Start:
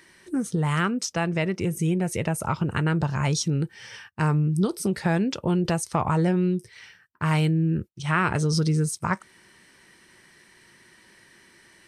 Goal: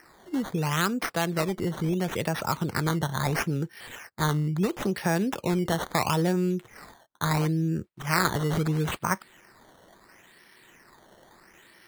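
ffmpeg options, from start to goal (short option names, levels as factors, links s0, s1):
-filter_complex "[0:a]lowshelf=f=130:g=-10.5,acrossover=split=370[s0][s1];[s1]acrusher=samples=12:mix=1:aa=0.000001:lfo=1:lforange=12:lforate=0.74[s2];[s0][s2]amix=inputs=2:normalize=0"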